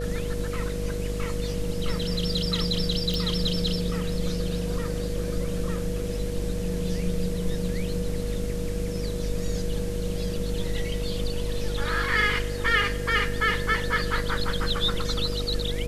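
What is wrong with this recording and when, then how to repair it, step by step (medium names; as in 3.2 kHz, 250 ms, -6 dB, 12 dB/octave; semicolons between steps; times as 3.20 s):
buzz 50 Hz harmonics 13 -31 dBFS
whine 480 Hz -33 dBFS
3.14 s: pop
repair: de-click; band-stop 480 Hz, Q 30; de-hum 50 Hz, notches 13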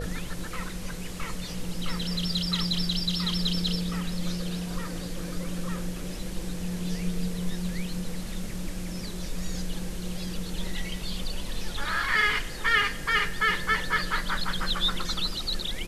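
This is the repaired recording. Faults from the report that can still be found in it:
nothing left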